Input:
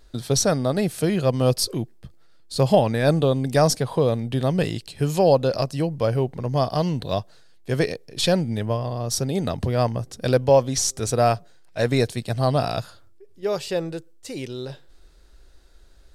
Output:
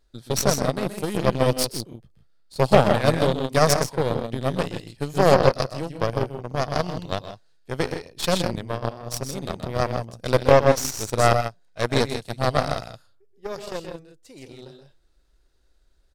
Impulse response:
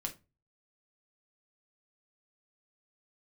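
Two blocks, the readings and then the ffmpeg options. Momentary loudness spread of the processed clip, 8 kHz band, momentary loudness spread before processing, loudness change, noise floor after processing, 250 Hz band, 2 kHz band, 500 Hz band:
17 LU, -2.5 dB, 13 LU, -0.5 dB, -60 dBFS, -3.0 dB, +3.5 dB, -0.5 dB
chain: -af "aecho=1:1:125.4|160.3:0.501|0.501,aeval=exprs='0.75*(cos(1*acos(clip(val(0)/0.75,-1,1)))-cos(1*PI/2))+0.0944*(cos(4*acos(clip(val(0)/0.75,-1,1)))-cos(4*PI/2))+0.0841*(cos(7*acos(clip(val(0)/0.75,-1,1)))-cos(7*PI/2))':c=same"

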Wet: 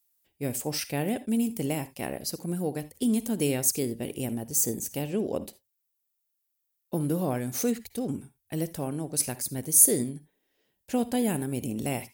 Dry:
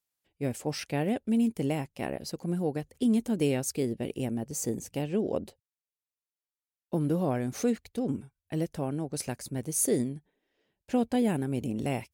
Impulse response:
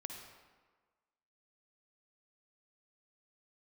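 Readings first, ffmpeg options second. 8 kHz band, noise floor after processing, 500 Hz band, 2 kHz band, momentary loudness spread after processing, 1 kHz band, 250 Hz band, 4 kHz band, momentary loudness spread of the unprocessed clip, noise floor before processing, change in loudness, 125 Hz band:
+10.0 dB, -79 dBFS, -0.5 dB, +1.5 dB, 9 LU, 0.0 dB, -0.5 dB, +4.0 dB, 9 LU, under -85 dBFS, +3.0 dB, -0.5 dB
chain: -filter_complex "[0:a]aemphasis=mode=production:type=50fm,asplit=2[a][b];[1:a]atrim=start_sample=2205,atrim=end_sample=3969[c];[b][c]afir=irnorm=-1:irlink=0,volume=1dB[d];[a][d]amix=inputs=2:normalize=0,volume=-4.5dB"

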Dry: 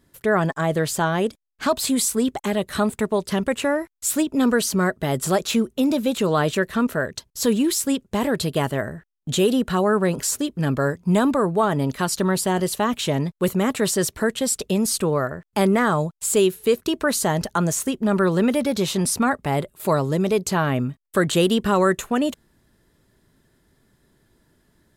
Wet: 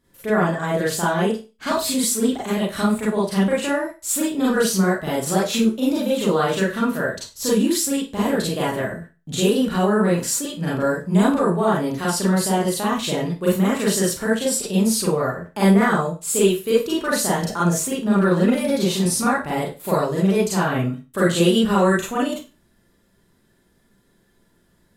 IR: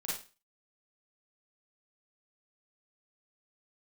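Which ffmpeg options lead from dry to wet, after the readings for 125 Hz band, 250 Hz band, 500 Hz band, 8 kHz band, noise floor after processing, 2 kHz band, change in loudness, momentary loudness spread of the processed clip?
+1.5 dB, +2.0 dB, +1.0 dB, +1.0 dB, -61 dBFS, +1.0 dB, +1.5 dB, 6 LU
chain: -filter_complex "[1:a]atrim=start_sample=2205,asetrate=48510,aresample=44100[a];[0:a][a]afir=irnorm=-1:irlink=0"

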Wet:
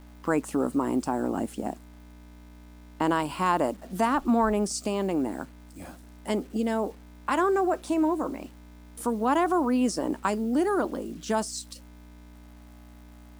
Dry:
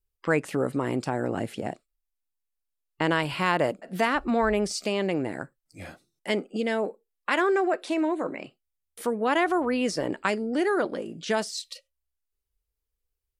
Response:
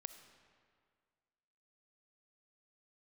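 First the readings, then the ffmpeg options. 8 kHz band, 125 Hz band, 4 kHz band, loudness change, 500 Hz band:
+2.5 dB, -3.0 dB, -5.5 dB, 0.0 dB, -1.5 dB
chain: -af "aeval=exprs='val(0)+0.00501*(sin(2*PI*60*n/s)+sin(2*PI*2*60*n/s)/2+sin(2*PI*3*60*n/s)/3+sin(2*PI*4*60*n/s)/4+sin(2*PI*5*60*n/s)/5)':c=same,equalizer=f=125:t=o:w=1:g=-11,equalizer=f=250:t=o:w=1:g=7,equalizer=f=500:t=o:w=1:g=-5,equalizer=f=1k:t=o:w=1:g=6,equalizer=f=2k:t=o:w=1:g=-10,equalizer=f=4k:t=o:w=1:g=-6,equalizer=f=8k:t=o:w=1:g=5,acrusher=bits=8:mix=0:aa=0.000001"

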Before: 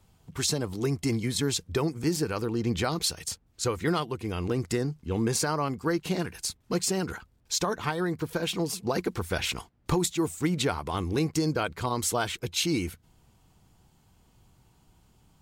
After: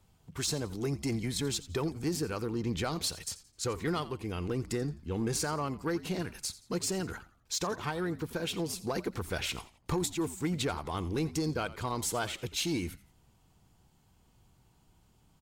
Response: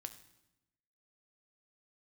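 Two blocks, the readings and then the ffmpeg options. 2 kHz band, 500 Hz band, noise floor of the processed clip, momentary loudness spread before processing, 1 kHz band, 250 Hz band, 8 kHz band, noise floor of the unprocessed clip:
-5.0 dB, -5.0 dB, -66 dBFS, 5 LU, -5.5 dB, -5.0 dB, -5.0 dB, -65 dBFS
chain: -filter_complex "[0:a]aeval=exprs='0.2*(cos(1*acos(clip(val(0)/0.2,-1,1)))-cos(1*PI/2))+0.0141*(cos(5*acos(clip(val(0)/0.2,-1,1)))-cos(5*PI/2))':c=same,asplit=4[a][b][c][d];[b]adelay=86,afreqshift=-75,volume=-17dB[e];[c]adelay=172,afreqshift=-150,volume=-26.1dB[f];[d]adelay=258,afreqshift=-225,volume=-35.2dB[g];[a][e][f][g]amix=inputs=4:normalize=0,volume=-6.5dB"

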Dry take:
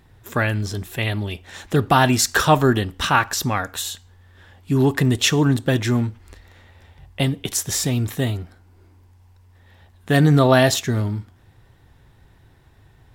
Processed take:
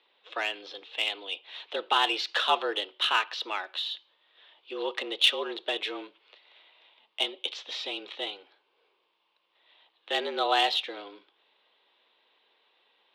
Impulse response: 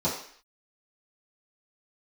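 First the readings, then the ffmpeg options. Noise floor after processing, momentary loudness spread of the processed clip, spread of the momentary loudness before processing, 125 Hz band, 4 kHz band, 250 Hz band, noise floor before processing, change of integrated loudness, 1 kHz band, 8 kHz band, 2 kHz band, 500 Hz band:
-73 dBFS, 16 LU, 12 LU, under -40 dB, -0.5 dB, -22.5 dB, -53 dBFS, -9.5 dB, -7.5 dB, -23.0 dB, -8.0 dB, -12.5 dB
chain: -filter_complex "[0:a]highpass=f=220:t=q:w=0.5412,highpass=f=220:t=q:w=1.307,lowpass=f=3.5k:t=q:w=0.5176,lowpass=f=3.5k:t=q:w=0.7071,lowpass=f=3.5k:t=q:w=1.932,afreqshift=94,acrossover=split=470 2600:gain=0.178 1 0.251[a][b][c];[a][b][c]amix=inputs=3:normalize=0,aexciter=amount=5.6:drive=9.8:freq=2.8k,volume=-8.5dB"

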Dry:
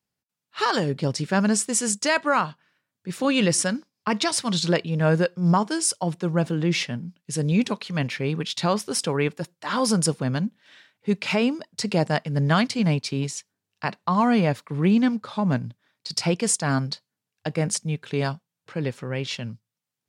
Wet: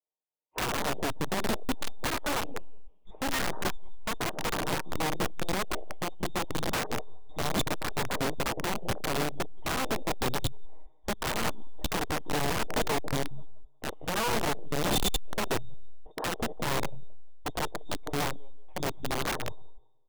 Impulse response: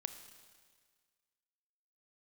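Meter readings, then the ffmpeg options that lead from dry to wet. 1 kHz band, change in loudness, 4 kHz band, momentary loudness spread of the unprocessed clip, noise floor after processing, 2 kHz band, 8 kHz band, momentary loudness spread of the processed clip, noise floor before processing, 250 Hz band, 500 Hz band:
-5.0 dB, -8.5 dB, -5.0 dB, 11 LU, -57 dBFS, -5.0 dB, -9.5 dB, 8 LU, under -85 dBFS, -12.5 dB, -7.5 dB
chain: -filter_complex "[0:a]lowpass=f=3.2k:t=q:w=0.5098,lowpass=f=3.2k:t=q:w=0.6013,lowpass=f=3.2k:t=q:w=0.9,lowpass=f=3.2k:t=q:w=2.563,afreqshift=-3800,aecho=1:1:6.5:0.66,bandreject=f=418.6:t=h:w=4,bandreject=f=837.2:t=h:w=4,bandreject=f=1.2558k:t=h:w=4,aeval=exprs='(tanh(11.2*val(0)+0.5)-tanh(0.5))/11.2':c=same,firequalizer=gain_entry='entry(210,0);entry(400,10);entry(920,3);entry(1400,-23)':delay=0.05:min_phase=1,asplit=2[a][b];[b]adelay=177,lowpass=f=2.9k:p=1,volume=-11.5dB,asplit=2[c][d];[d]adelay=177,lowpass=f=2.9k:p=1,volume=0.22,asplit=2[e][f];[f]adelay=177,lowpass=f=2.9k:p=1,volume=0.22[g];[a][c][e][g]amix=inputs=4:normalize=0,adynamicequalizer=threshold=0.00158:dfrequency=2800:dqfactor=0.92:tfrequency=2800:tqfactor=0.92:attack=5:release=100:ratio=0.375:range=3:mode=cutabove:tftype=bell,asplit=2[h][i];[1:a]atrim=start_sample=2205,lowpass=6.4k[j];[i][j]afir=irnorm=-1:irlink=0,volume=-3.5dB[k];[h][k]amix=inputs=2:normalize=0,afwtdn=0.0251,acompressor=threshold=-32dB:ratio=10,aeval=exprs='(mod(35.5*val(0)+1,2)-1)/35.5':c=same,volume=6.5dB"

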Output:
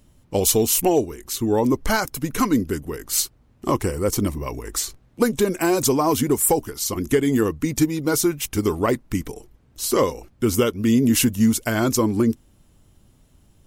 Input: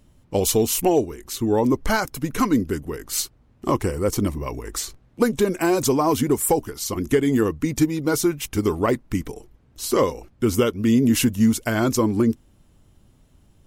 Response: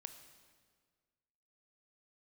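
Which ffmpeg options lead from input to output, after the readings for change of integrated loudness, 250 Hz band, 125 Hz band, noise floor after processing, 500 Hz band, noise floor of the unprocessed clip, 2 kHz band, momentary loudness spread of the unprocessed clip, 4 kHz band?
+0.5 dB, 0.0 dB, 0.0 dB, -57 dBFS, 0.0 dB, -57 dBFS, +0.5 dB, 10 LU, +2.0 dB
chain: -af "highshelf=f=5k:g=5"

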